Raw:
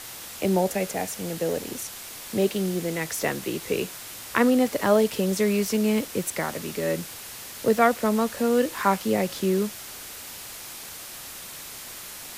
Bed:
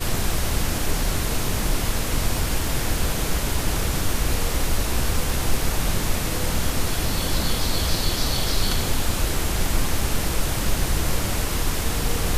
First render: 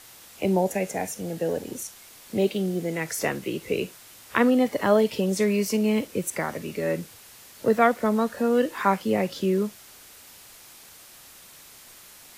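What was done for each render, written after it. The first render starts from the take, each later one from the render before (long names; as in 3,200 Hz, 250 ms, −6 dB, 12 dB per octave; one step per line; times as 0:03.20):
noise reduction from a noise print 9 dB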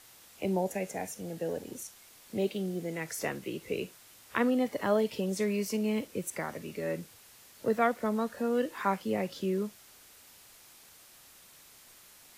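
level −7.5 dB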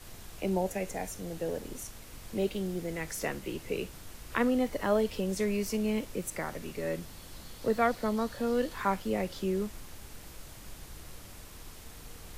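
mix in bed −25 dB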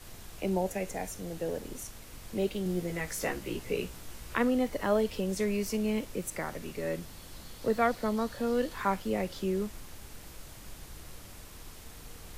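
0:02.64–0:04.33: double-tracking delay 17 ms −4 dB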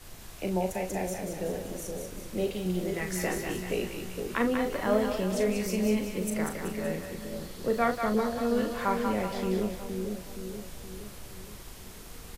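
double-tracking delay 38 ms −7.5 dB
echo with a time of its own for lows and highs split 620 Hz, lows 470 ms, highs 189 ms, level −5 dB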